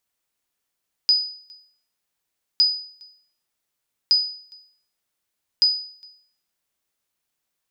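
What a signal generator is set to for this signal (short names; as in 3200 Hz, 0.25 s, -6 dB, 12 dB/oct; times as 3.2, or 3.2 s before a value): sonar ping 4970 Hz, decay 0.54 s, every 1.51 s, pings 4, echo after 0.41 s, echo -28 dB -10 dBFS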